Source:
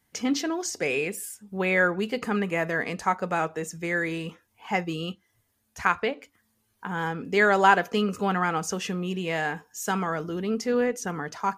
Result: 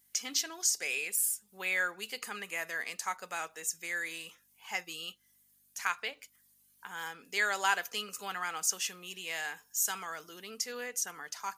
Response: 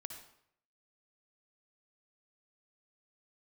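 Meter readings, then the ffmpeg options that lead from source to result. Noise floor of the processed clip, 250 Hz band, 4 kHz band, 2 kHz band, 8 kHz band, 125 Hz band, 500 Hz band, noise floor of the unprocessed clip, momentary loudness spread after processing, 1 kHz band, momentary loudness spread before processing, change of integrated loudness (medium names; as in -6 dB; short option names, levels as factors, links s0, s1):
-68 dBFS, -24.0 dB, -1.0 dB, -7.0 dB, +4.5 dB, -27.0 dB, -18.0 dB, -72 dBFS, 13 LU, -12.0 dB, 11 LU, -7.5 dB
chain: -af "aeval=exprs='val(0)+0.00316*(sin(2*PI*50*n/s)+sin(2*PI*2*50*n/s)/2+sin(2*PI*3*50*n/s)/3+sin(2*PI*4*50*n/s)/4+sin(2*PI*5*50*n/s)/5)':c=same,aderivative,volume=1.78"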